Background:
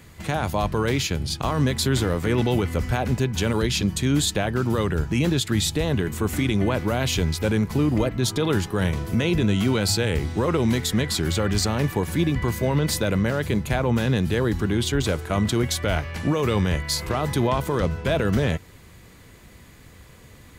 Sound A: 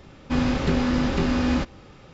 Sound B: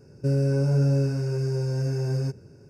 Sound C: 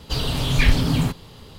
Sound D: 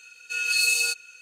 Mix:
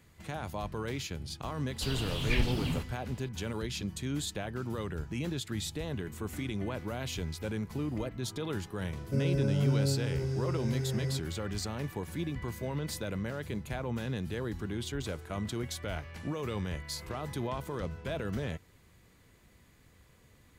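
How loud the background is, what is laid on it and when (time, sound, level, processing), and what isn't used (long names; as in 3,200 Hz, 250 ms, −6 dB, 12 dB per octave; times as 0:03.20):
background −13.5 dB
0:01.71: mix in C −13 dB + parametric band 2,700 Hz +6 dB 0.44 octaves
0:08.88: mix in B −7 dB
not used: A, D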